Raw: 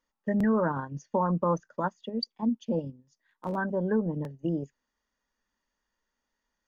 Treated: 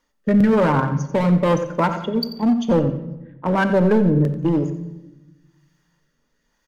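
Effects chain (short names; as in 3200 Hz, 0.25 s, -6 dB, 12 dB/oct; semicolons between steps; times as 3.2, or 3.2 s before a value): 2.81–4.19 LPF 2700 Hz 24 dB/oct; in parallel at -4 dB: wavefolder -27 dBFS; on the sum: rotary speaker horn 1 Hz; on a send: feedback echo 89 ms, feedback 32%, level -14 dB; on the sum: shoebox room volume 570 m³, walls mixed, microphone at 0.39 m; maximiser +19 dB; gain -8 dB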